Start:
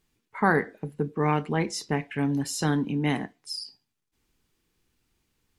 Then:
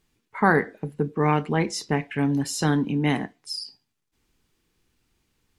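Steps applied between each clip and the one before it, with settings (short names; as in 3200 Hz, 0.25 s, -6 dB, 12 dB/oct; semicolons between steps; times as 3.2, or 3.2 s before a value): high shelf 11000 Hz -4 dB; gain +3 dB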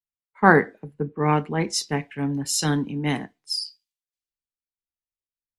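three-band expander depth 100%; gain -1.5 dB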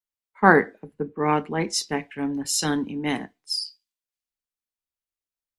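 bell 140 Hz -12.5 dB 0.27 oct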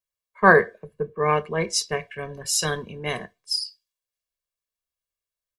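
comb 1.8 ms, depth 91%; gain -1 dB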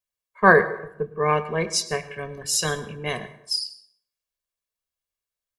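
plate-style reverb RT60 0.71 s, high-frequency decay 0.65×, pre-delay 90 ms, DRR 14.5 dB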